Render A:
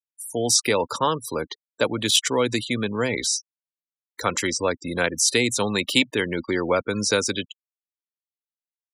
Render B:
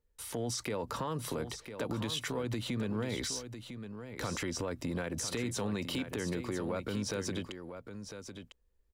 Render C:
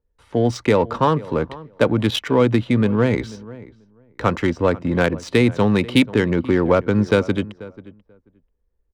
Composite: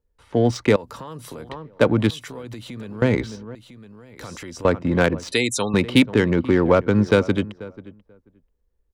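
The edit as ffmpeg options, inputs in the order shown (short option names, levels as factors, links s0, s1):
-filter_complex "[1:a]asplit=3[s0][s1][s2];[2:a]asplit=5[s3][s4][s5][s6][s7];[s3]atrim=end=0.762[s8];[s0]atrim=start=0.758:end=1.492[s9];[s4]atrim=start=1.488:end=2.112[s10];[s1]atrim=start=2.108:end=3.022[s11];[s5]atrim=start=3.018:end=3.552[s12];[s2]atrim=start=3.548:end=4.652[s13];[s6]atrim=start=4.648:end=5.322[s14];[0:a]atrim=start=5.318:end=5.742[s15];[s7]atrim=start=5.738[s16];[s8][s9]acrossfade=d=0.004:c1=hsin:c2=hsin[s17];[s17][s10]acrossfade=d=0.004:c1=hsin:c2=hsin[s18];[s18][s11]acrossfade=d=0.004:c1=hsin:c2=hsin[s19];[s19][s12]acrossfade=d=0.004:c1=hsin:c2=hsin[s20];[s20][s13]acrossfade=d=0.004:c1=hsin:c2=hsin[s21];[s21][s14]acrossfade=d=0.004:c1=hsin:c2=hsin[s22];[s22][s15]acrossfade=d=0.004:c1=hsin:c2=hsin[s23];[s23][s16]acrossfade=d=0.004:c1=hsin:c2=hsin"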